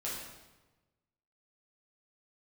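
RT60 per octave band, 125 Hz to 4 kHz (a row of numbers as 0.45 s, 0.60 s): 1.5 s, 1.3 s, 1.2 s, 1.1 s, 1.0 s, 0.90 s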